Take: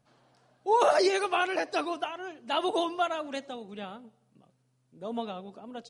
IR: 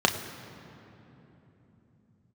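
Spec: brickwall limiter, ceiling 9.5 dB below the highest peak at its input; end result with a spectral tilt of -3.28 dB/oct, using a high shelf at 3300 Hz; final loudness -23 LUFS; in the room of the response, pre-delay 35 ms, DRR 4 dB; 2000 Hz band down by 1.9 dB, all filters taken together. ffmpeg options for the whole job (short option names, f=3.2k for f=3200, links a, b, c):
-filter_complex "[0:a]equalizer=f=2k:t=o:g=-4.5,highshelf=f=3.3k:g=4.5,alimiter=limit=-21dB:level=0:latency=1,asplit=2[a][b];[1:a]atrim=start_sample=2205,adelay=35[c];[b][c]afir=irnorm=-1:irlink=0,volume=-19dB[d];[a][d]amix=inputs=2:normalize=0,volume=8.5dB"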